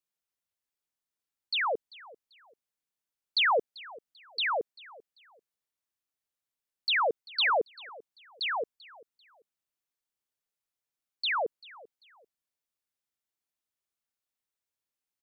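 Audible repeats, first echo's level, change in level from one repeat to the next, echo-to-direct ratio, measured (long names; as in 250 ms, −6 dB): 2, −21.0 dB, −11.0 dB, −20.5 dB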